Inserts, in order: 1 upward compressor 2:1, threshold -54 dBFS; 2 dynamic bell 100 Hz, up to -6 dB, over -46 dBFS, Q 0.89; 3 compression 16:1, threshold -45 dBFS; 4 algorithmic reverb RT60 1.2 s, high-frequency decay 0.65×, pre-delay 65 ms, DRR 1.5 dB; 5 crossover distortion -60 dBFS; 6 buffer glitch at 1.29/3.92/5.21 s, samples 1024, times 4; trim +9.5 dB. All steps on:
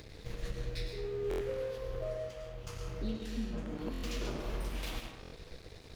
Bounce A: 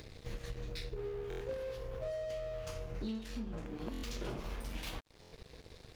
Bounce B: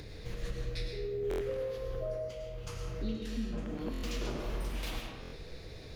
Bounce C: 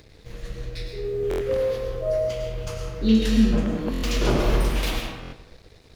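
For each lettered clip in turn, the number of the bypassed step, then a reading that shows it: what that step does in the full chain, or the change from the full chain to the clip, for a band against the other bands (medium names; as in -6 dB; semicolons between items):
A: 4, crest factor change +3.0 dB; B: 5, distortion -18 dB; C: 3, mean gain reduction 9.0 dB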